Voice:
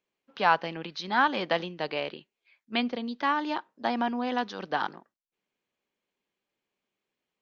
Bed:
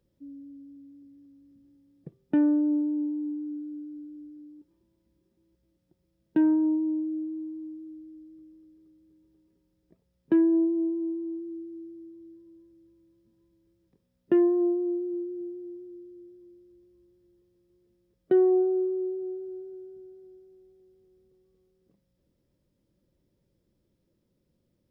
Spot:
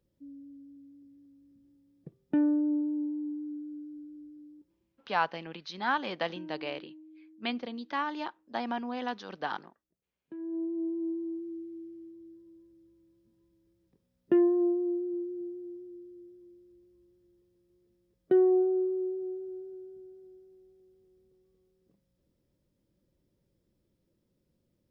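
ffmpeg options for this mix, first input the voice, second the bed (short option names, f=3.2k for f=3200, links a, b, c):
-filter_complex "[0:a]adelay=4700,volume=-5.5dB[a];[1:a]volume=16.5dB,afade=t=out:st=4.53:d=0.8:silence=0.11885,afade=t=in:st=10.37:d=0.74:silence=0.1[b];[a][b]amix=inputs=2:normalize=0"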